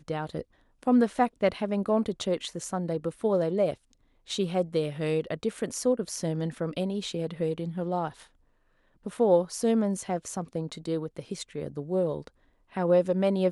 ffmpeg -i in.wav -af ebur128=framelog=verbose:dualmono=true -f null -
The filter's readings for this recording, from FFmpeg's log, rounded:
Integrated loudness:
  I:         -25.7 LUFS
  Threshold: -36.2 LUFS
Loudness range:
  LRA:         3.3 LU
  Threshold: -46.7 LUFS
  LRA low:   -28.3 LUFS
  LRA high:  -25.0 LUFS